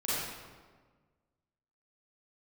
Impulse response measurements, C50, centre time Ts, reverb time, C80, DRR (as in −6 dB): −5.5 dB, 117 ms, 1.5 s, −1.0 dB, −11.0 dB